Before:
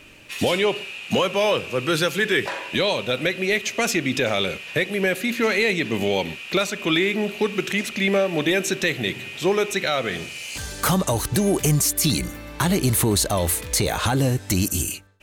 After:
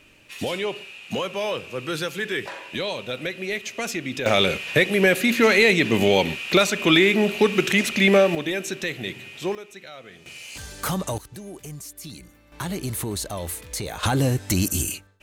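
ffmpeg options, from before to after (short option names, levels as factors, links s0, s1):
-af "asetnsamples=n=441:p=0,asendcmd='4.26 volume volume 4dB;8.35 volume volume -6dB;9.55 volume volume -18.5dB;10.26 volume volume -6dB;11.18 volume volume -18.5dB;12.52 volume volume -9dB;14.03 volume volume -0.5dB',volume=0.473"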